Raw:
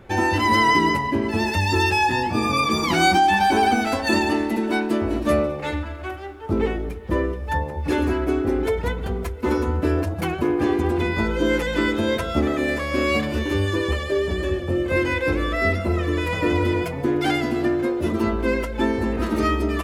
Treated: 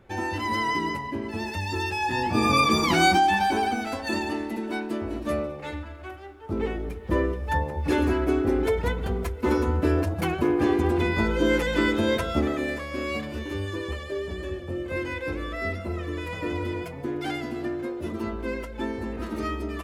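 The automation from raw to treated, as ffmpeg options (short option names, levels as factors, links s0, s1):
-af "volume=2.37,afade=t=in:st=1.99:d=0.53:silence=0.316228,afade=t=out:st=2.52:d=1.2:silence=0.354813,afade=t=in:st=6.46:d=0.72:silence=0.473151,afade=t=out:st=12.16:d=0.74:silence=0.421697"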